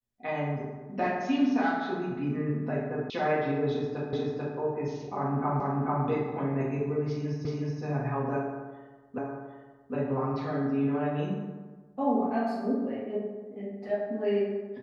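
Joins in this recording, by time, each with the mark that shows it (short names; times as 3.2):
3.1 sound cut off
4.13 repeat of the last 0.44 s
5.6 repeat of the last 0.44 s
7.45 repeat of the last 0.37 s
9.18 repeat of the last 0.76 s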